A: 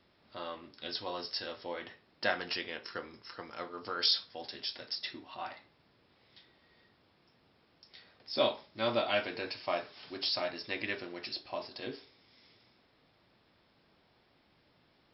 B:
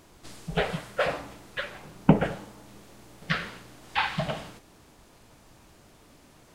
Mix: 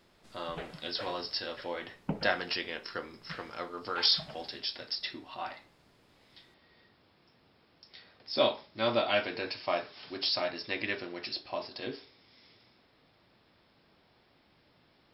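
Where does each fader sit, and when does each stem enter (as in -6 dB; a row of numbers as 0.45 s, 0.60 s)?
+2.5 dB, -16.0 dB; 0.00 s, 0.00 s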